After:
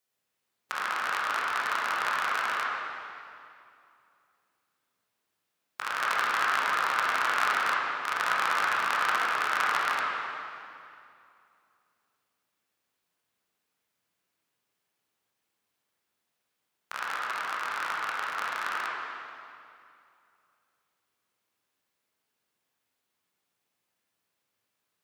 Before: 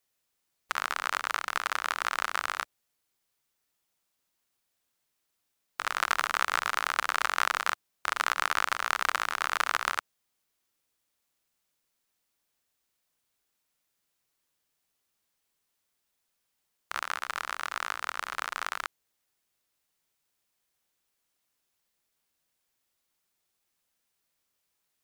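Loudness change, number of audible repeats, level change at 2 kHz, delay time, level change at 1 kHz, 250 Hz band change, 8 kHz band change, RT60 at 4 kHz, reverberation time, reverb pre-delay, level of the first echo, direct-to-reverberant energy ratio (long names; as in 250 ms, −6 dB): +2.0 dB, no echo audible, +2.5 dB, no echo audible, +3.0 dB, +3.5 dB, −3.5 dB, 2.1 s, 2.5 s, 15 ms, no echo audible, −5.5 dB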